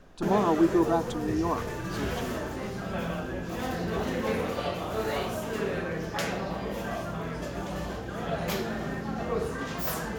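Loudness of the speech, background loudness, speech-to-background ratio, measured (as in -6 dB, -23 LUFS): -27.5 LUFS, -32.5 LUFS, 5.0 dB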